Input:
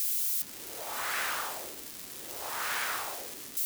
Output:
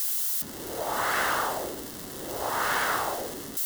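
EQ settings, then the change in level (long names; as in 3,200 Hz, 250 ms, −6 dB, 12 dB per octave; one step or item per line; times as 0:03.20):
tilt shelving filter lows +6 dB, about 1,300 Hz
notch filter 2,400 Hz, Q 5.1
+8.0 dB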